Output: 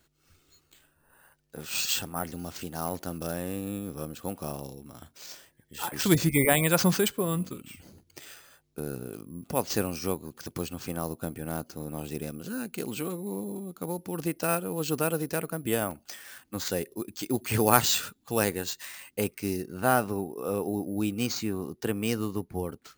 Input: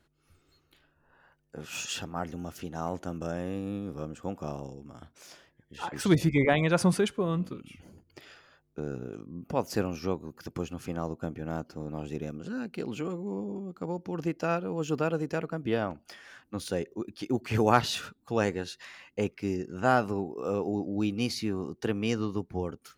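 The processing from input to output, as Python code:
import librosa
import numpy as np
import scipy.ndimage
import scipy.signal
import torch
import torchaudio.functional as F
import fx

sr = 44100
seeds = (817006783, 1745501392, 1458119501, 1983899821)

y = np.repeat(x[::4], 4)[:len(x)]
y = fx.high_shelf(y, sr, hz=3600.0, db=fx.steps((0.0, 11.5), (19.6, 4.0)))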